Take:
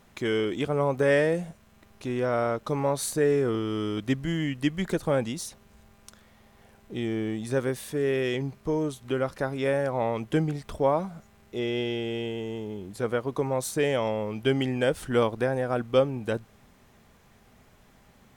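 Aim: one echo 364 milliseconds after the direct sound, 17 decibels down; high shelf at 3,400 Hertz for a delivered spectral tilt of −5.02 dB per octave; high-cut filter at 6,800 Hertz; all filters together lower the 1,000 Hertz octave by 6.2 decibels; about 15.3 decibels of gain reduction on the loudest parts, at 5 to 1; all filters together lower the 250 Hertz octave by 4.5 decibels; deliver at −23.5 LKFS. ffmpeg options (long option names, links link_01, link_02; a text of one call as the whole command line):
ffmpeg -i in.wav -af "lowpass=6800,equalizer=frequency=250:width_type=o:gain=-5.5,equalizer=frequency=1000:width_type=o:gain=-8.5,highshelf=frequency=3400:gain=3,acompressor=threshold=-37dB:ratio=5,aecho=1:1:364:0.141,volume=17dB" out.wav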